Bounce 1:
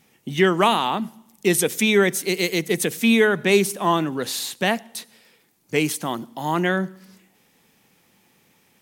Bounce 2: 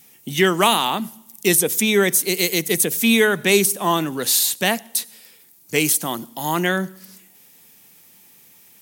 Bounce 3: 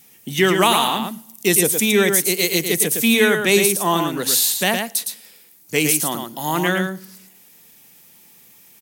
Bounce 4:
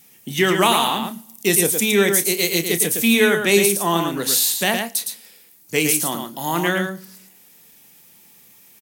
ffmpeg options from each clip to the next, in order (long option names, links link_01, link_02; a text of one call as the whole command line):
ffmpeg -i in.wav -filter_complex "[0:a]aemphasis=mode=production:type=75kf,acrossover=split=1200[link_01][link_02];[link_02]alimiter=limit=-5.5dB:level=0:latency=1:release=395[link_03];[link_01][link_03]amix=inputs=2:normalize=0" out.wav
ffmpeg -i in.wav -af "aecho=1:1:112:0.531" out.wav
ffmpeg -i in.wav -filter_complex "[0:a]asplit=2[link_01][link_02];[link_02]adelay=30,volume=-11.5dB[link_03];[link_01][link_03]amix=inputs=2:normalize=0,volume=-1dB" out.wav